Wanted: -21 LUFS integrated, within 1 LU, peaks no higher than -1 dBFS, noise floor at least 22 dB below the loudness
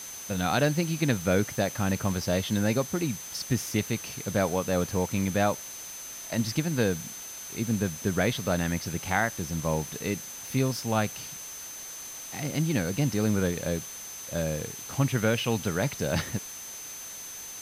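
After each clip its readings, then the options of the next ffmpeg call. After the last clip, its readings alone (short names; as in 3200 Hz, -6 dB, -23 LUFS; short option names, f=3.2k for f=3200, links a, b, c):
steady tone 6200 Hz; tone level -40 dBFS; noise floor -41 dBFS; noise floor target -51 dBFS; loudness -29.0 LUFS; peak -10.5 dBFS; loudness target -21.0 LUFS
-> -af "bandreject=f=6.2k:w=30"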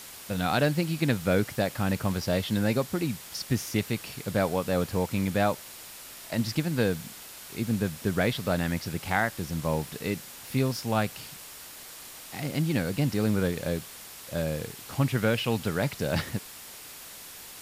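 steady tone none; noise floor -45 dBFS; noise floor target -51 dBFS
-> -af "afftdn=nr=6:nf=-45"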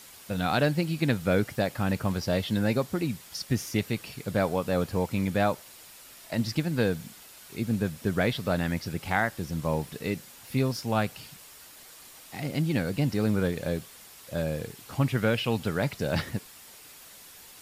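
noise floor -50 dBFS; noise floor target -51 dBFS
-> -af "afftdn=nr=6:nf=-50"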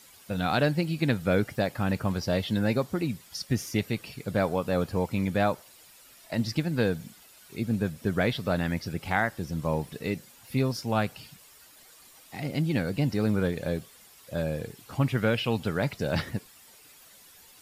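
noise floor -54 dBFS; loudness -29.0 LUFS; peak -10.0 dBFS; loudness target -21.0 LUFS
-> -af "volume=8dB"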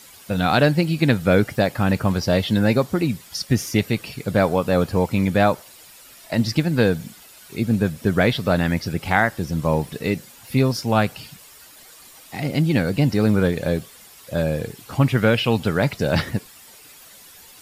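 loudness -21.0 LUFS; peak -2.0 dBFS; noise floor -46 dBFS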